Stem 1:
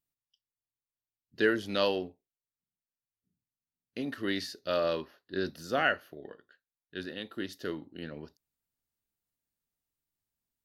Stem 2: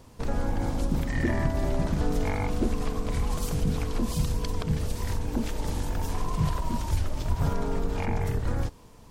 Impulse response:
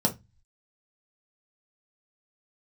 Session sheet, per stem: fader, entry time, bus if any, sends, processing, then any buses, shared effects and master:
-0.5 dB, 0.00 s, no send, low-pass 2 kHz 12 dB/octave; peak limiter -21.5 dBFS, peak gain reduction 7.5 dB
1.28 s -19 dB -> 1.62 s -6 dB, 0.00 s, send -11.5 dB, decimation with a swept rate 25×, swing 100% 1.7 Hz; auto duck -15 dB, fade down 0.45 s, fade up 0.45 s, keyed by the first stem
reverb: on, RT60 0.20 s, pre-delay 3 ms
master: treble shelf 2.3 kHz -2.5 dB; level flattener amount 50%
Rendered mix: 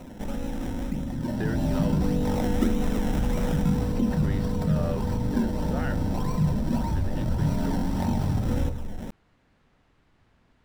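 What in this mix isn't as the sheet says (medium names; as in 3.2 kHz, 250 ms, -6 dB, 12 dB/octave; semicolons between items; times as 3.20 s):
stem 1 -0.5 dB -> -8.5 dB; master: missing treble shelf 2.3 kHz -2.5 dB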